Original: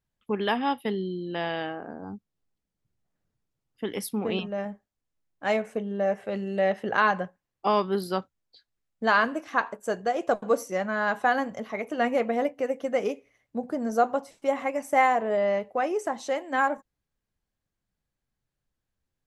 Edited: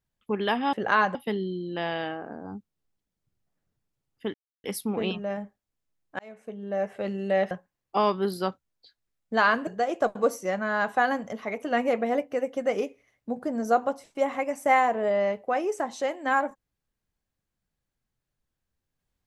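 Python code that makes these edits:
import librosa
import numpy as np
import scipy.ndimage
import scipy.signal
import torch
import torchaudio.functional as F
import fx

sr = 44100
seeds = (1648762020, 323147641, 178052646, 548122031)

y = fx.edit(x, sr, fx.insert_silence(at_s=3.92, length_s=0.3),
    fx.fade_in_span(start_s=5.47, length_s=0.81),
    fx.move(start_s=6.79, length_s=0.42, to_s=0.73),
    fx.cut(start_s=9.37, length_s=0.57), tone=tone)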